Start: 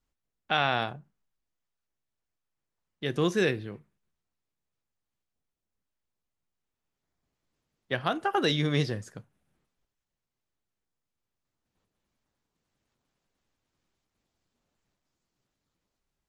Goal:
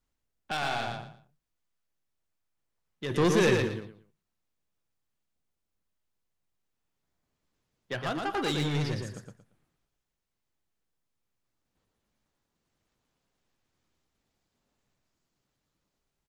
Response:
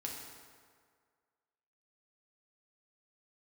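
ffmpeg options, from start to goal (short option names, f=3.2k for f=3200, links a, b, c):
-filter_complex "[0:a]asoftclip=type=tanh:threshold=-26.5dB,asplit=3[a][b][c];[a]afade=t=out:st=3.1:d=0.02[d];[b]acontrast=77,afade=t=in:st=3.1:d=0.02,afade=t=out:st=3.67:d=0.02[e];[c]afade=t=in:st=3.67:d=0.02[f];[d][e][f]amix=inputs=3:normalize=0,aecho=1:1:115|230|345:0.631|0.158|0.0394"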